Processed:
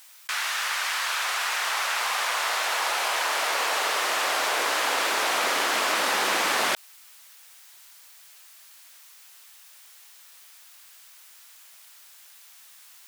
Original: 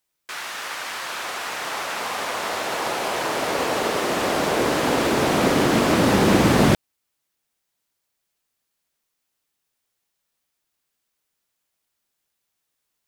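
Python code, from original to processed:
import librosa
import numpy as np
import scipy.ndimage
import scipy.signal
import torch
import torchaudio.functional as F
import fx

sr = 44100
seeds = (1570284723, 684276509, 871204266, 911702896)

y = scipy.signal.sosfilt(scipy.signal.butter(2, 1000.0, 'highpass', fs=sr, output='sos'), x)
y = fx.env_flatten(y, sr, amount_pct=50)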